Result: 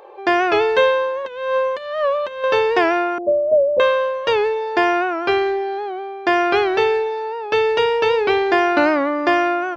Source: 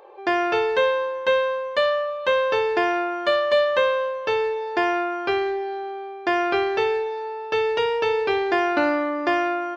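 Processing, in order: 1.25–2.44 s: compressor with a negative ratio -26 dBFS, ratio -0.5; 3.18–3.80 s: steep low-pass 680 Hz 48 dB/octave; warped record 78 rpm, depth 100 cents; trim +5 dB

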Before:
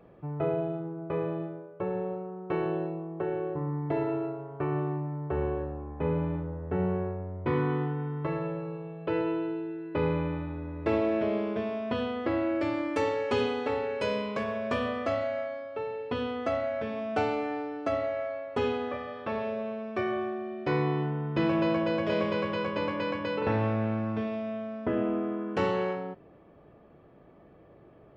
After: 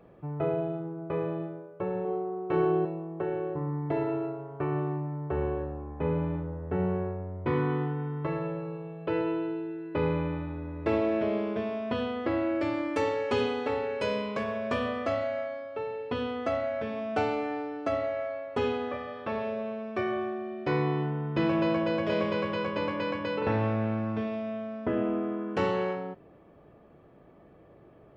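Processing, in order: 2.02–2.85 s: flutter echo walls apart 5.1 m, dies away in 0.36 s

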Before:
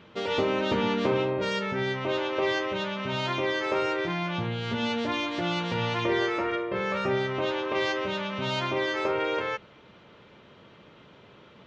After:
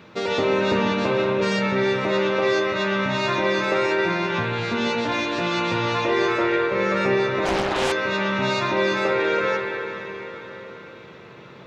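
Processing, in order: high-pass 79 Hz; treble shelf 5.1 kHz +6 dB; band-stop 3.1 kHz, Q 5.9; in parallel at -1 dB: compression, threshold -28 dBFS, peak gain reduction 8 dB; on the sum: echo that smears into a reverb 507 ms, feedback 45%, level -14.5 dB; on a send at -2 dB: reverberation RT60 4.0 s, pre-delay 59 ms; 7.45–7.92 s: on the sum: loudspeaker Doppler distortion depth 0.86 ms

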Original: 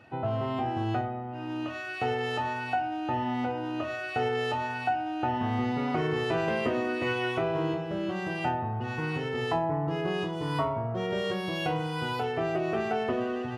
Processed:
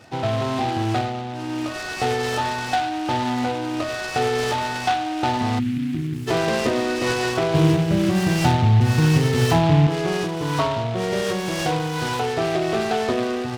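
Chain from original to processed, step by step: 5.59–6.27 s: time-frequency box 360–4400 Hz -29 dB; 7.54–9.87 s: tone controls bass +13 dB, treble +15 dB; delay time shaken by noise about 2.3 kHz, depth 0.056 ms; trim +7 dB

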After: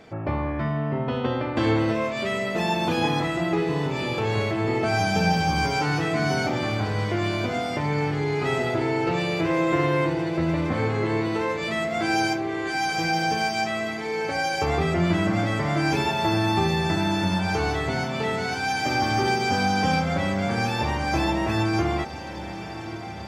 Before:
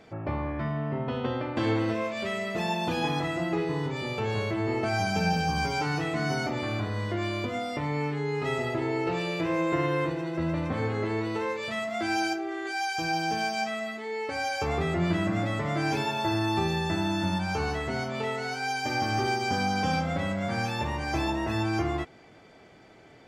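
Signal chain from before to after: echo that smears into a reverb 1176 ms, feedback 66%, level -13 dB; trim +4.5 dB

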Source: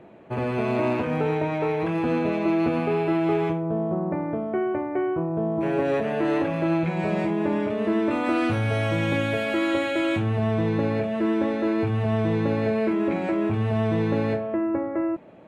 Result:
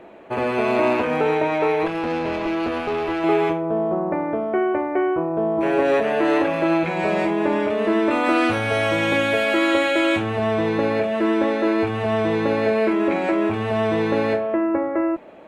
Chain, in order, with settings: peaking EQ 130 Hz -14.5 dB 1.6 oct; 1.87–3.24 s: valve stage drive 26 dB, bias 0.7; trim +7.5 dB

